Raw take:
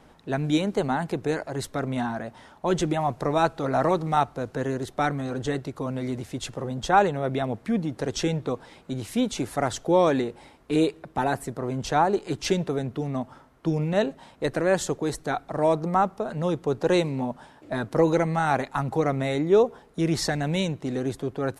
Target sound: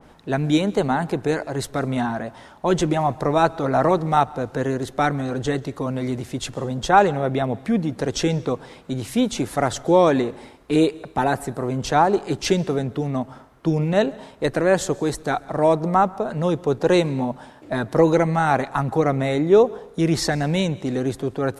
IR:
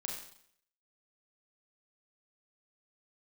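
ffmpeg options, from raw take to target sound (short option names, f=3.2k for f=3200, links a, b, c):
-filter_complex "[0:a]asplit=2[a][b];[1:a]atrim=start_sample=2205,adelay=135[c];[b][c]afir=irnorm=-1:irlink=0,volume=-22dB[d];[a][d]amix=inputs=2:normalize=0,adynamicequalizer=threshold=0.0158:dfrequency=2000:dqfactor=0.7:tfrequency=2000:tqfactor=0.7:attack=5:release=100:ratio=0.375:range=1.5:mode=cutabove:tftype=highshelf,volume=4.5dB"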